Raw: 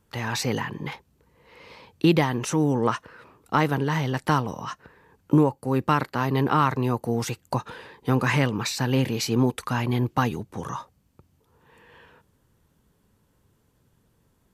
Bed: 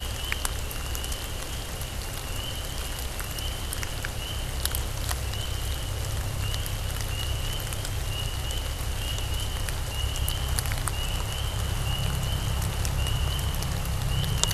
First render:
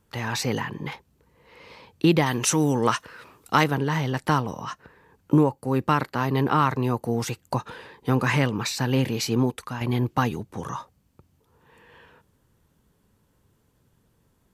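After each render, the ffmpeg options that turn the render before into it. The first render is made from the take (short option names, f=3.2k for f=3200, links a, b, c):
-filter_complex "[0:a]asettb=1/sr,asplit=3[a][b][c];[a]atrim=end=2.264[d];[b]atrim=start=2.26:end=3.64,asetpts=PTS-STARTPTS,afade=t=in:d=0.004:c=qsin,afade=t=out:st=1.376:d=0.004:c=qsin,highshelf=f=2.1k:g=10.5[e];[c]atrim=start=3.636[f];[d][e]acrossfade=d=0.004:c1=hsin:c2=qsin[g];[g][f]acrossfade=d=0.004:c1=qsin:c2=hsin,asplit=2[h][i];[h]atrim=end=9.81,asetpts=PTS-STARTPTS,afade=t=out:st=9.33:d=0.48:silence=0.375837[j];[i]atrim=start=9.81,asetpts=PTS-STARTPTS,afade=t=in:d=0.004:c=hsin:silence=0.375837[k];[j][k]concat=n=2:v=0:a=1"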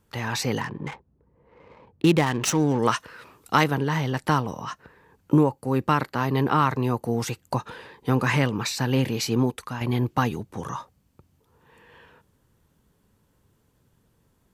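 -filter_complex "[0:a]asettb=1/sr,asplit=3[a][b][c];[a]atrim=end=0.614[d];[b]atrim=start=0.61:end=2.79,asetpts=PTS-STARTPTS,afade=t=in:d=0.004:c=qsin,afade=t=out:st=2.176:d=0.004:c=qsin,adynamicsmooth=sensitivity=5.5:basefreq=890[e];[c]atrim=start=2.786[f];[d][e]acrossfade=d=0.004:c1=hsin:c2=qsin[g];[g][f]acrossfade=d=0.004:c1=qsin:c2=hsin"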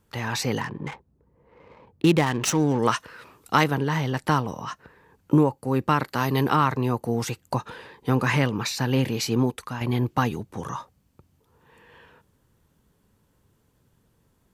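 -filter_complex "[0:a]asettb=1/sr,asplit=3[a][b][c];[a]atrim=end=6.084[d];[b]atrim=start=6.08:end=6.56,asetpts=PTS-STARTPTS,afade=t=in:d=0.004:c=qsin,afade=t=out:st=0.476:d=0.004:c=qsin,highshelf=f=3.9k:g=10[e];[c]atrim=start=6.556[f];[d][e]acrossfade=d=0.004:c1=hsin:c2=qsin[g];[g][f]acrossfade=d=0.004:c1=qsin:c2=hsin,asettb=1/sr,asplit=3[h][i][j];[h]atrim=end=8.264[k];[i]atrim=start=8.26:end=9.03,asetpts=PTS-STARTPTS,afade=t=in:d=0.004:c=qsin,afade=t=out:st=0.766:d=0.004:c=qsin,bandreject=f=7.9k:w=12[l];[j]atrim=start=9.026[m];[k][l]acrossfade=d=0.004:c1=hsin:c2=qsin[n];[n][m]acrossfade=d=0.004:c1=qsin:c2=hsin"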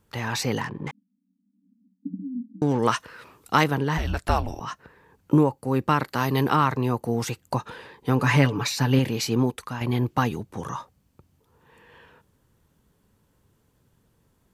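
-filter_complex "[0:a]asettb=1/sr,asplit=3[a][b][c];[a]atrim=end=0.914[d];[b]atrim=start=0.91:end=2.62,asetpts=PTS-STARTPTS,afade=t=in:d=0.004:c=qsin,afade=t=out:st=1.706:d=0.004:c=qsin,asuperpass=centerf=230:order=20:qfactor=2.2[e];[c]atrim=start=2.616[f];[d][e]acrossfade=d=0.004:c1=hsin:c2=qsin[g];[g][f]acrossfade=d=0.004:c1=qsin:c2=hsin,asplit=3[h][i][j];[h]afade=t=out:st=3.97:d=0.02[k];[i]afreqshift=-210,afade=t=in:st=3.97:d=0.02,afade=t=out:st=4.59:d=0.02[l];[j]afade=t=in:st=4.59:d=0.02[m];[k][l][m]amix=inputs=3:normalize=0,asettb=1/sr,asplit=3[n][o][p];[n]atrim=end=8.194[q];[o]atrim=start=8.19:end=8.99,asetpts=PTS-STARTPTS,afade=t=in:d=0.004:c=qsin,afade=t=out:st=0.796:d=0.004:c=qsin,aecho=1:1:7:0.65,atrim=end_sample=35280[r];[p]atrim=start=8.986[s];[q][r]acrossfade=d=0.004:c1=hsin:c2=qsin[t];[t][s]acrossfade=d=0.004:c1=qsin:c2=hsin"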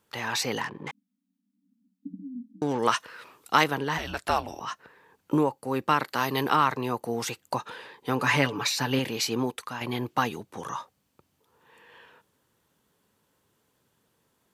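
-af "highpass=f=440:p=1,equalizer=f=3.4k:t=o:w=0.77:g=2"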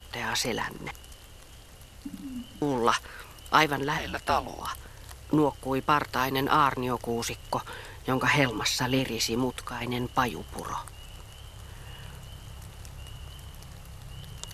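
-filter_complex "[1:a]volume=-16dB[a];[0:a][a]amix=inputs=2:normalize=0"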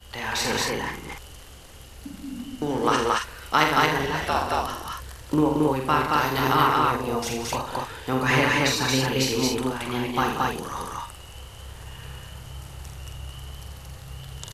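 -filter_complex "[0:a]asplit=2[a][b];[b]adelay=46,volume=-5dB[c];[a][c]amix=inputs=2:normalize=0,aecho=1:1:81.63|180.8|224.5:0.398|0.316|0.891"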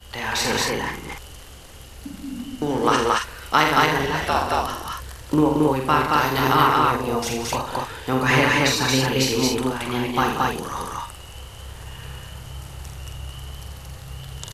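-af "volume=3dB,alimiter=limit=-1dB:level=0:latency=1"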